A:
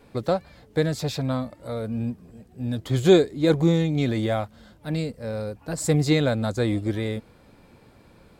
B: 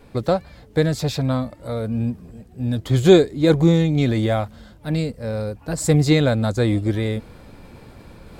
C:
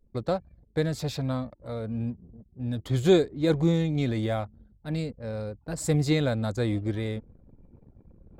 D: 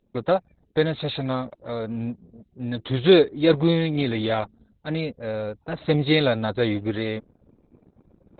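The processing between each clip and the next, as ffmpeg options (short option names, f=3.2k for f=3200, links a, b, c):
-af "lowshelf=f=77:g=8.5,areverse,acompressor=mode=upward:threshold=-38dB:ratio=2.5,areverse,volume=3.5dB"
-af "anlmdn=1,volume=-8dB"
-af "aemphasis=mode=production:type=bsi,volume=8.5dB" -ar 48000 -c:a libopus -b:a 8k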